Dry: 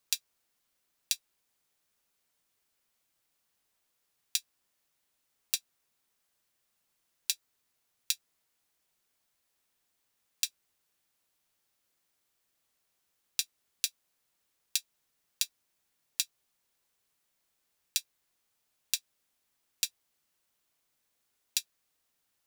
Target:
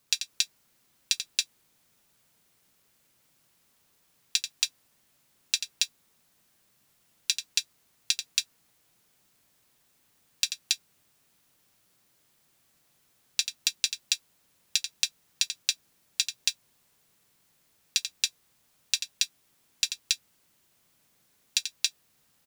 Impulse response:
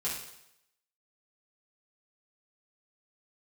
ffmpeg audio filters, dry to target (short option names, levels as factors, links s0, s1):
-filter_complex "[0:a]acrossover=split=7400[s0][s1];[s1]acompressor=threshold=0.00891:ratio=4:attack=1:release=60[s2];[s0][s2]amix=inputs=2:normalize=0,equalizer=f=150:w=0.72:g=8.5,aecho=1:1:87.46|277:0.355|1,volume=2.24"